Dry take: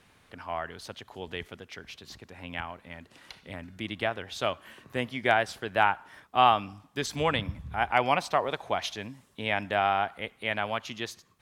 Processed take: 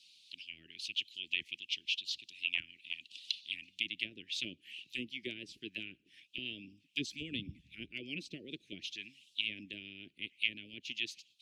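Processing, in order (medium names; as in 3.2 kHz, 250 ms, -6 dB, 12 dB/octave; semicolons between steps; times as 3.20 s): auto-wah 700–4400 Hz, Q 2.8, down, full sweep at -26.5 dBFS; Chebyshev band-stop 330–2600 Hz, order 4; harmonic-percussive split harmonic -11 dB; trim +15.5 dB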